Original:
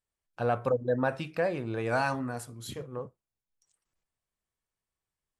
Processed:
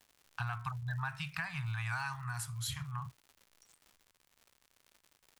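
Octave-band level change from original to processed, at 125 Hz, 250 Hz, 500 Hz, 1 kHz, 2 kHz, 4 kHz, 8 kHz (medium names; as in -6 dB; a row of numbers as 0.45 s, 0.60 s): -0.5 dB, -15.5 dB, -32.5 dB, -8.5 dB, -3.0 dB, +1.5 dB, +3.0 dB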